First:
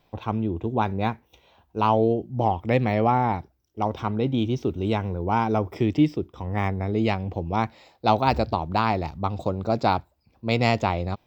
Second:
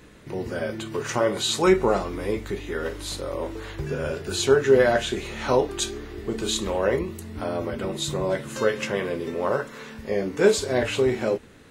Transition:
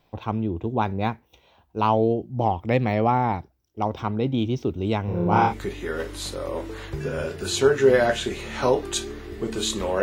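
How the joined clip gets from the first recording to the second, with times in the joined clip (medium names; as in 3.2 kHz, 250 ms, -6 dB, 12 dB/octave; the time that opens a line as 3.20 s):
first
5.05–5.54 s: flutter echo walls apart 4.9 m, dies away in 1.2 s
5.50 s: go over to second from 2.36 s, crossfade 0.08 s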